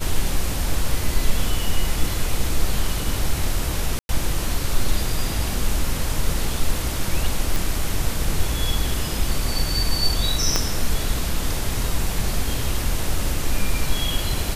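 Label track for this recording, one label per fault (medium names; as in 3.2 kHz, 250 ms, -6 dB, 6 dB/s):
3.990000	4.090000	dropout 101 ms
7.560000	7.560000	pop
10.560000	10.560000	pop -4 dBFS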